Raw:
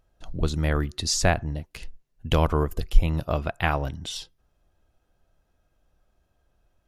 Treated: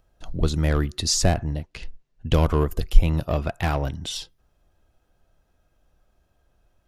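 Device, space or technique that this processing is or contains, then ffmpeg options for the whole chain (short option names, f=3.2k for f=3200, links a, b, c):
one-band saturation: -filter_complex "[0:a]acrossover=split=540|3900[a][b][c];[b]asoftclip=type=tanh:threshold=-26.5dB[d];[a][d][c]amix=inputs=3:normalize=0,asettb=1/sr,asplit=3[e][f][g];[e]atrim=end=1.634[h];[f]atrim=start=1.63:end=2.34,asetpts=PTS-STARTPTS,afade=t=in:d=0.004:c=qsin,afade=t=out:st=0.706:d=0.004:c=qsin,lowpass=5.8k[i];[g]atrim=start=2.336[j];[h][i]acrossfade=d=0.004:c1=hsin:c2=qsin[k];[k][j]acrossfade=d=0.004:c1=qsin:c2=hsin,volume=3dB"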